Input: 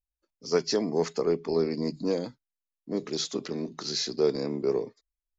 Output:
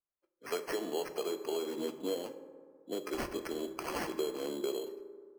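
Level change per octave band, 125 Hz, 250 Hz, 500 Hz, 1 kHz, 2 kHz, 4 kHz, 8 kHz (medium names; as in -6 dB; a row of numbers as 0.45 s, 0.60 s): -16.5 dB, -9.0 dB, -8.5 dB, -2.0 dB, -1.0 dB, -10.0 dB, no reading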